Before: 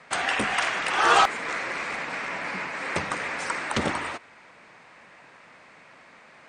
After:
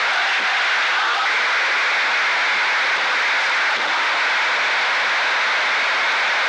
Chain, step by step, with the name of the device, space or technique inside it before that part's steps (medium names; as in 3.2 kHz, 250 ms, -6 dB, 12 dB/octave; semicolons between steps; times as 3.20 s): home computer beeper (one-bit comparator; cabinet simulation 580–5200 Hz, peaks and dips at 890 Hz +3 dB, 1.5 kHz +7 dB, 2.2 kHz +5 dB, 3.6 kHz +5 dB); trim +7 dB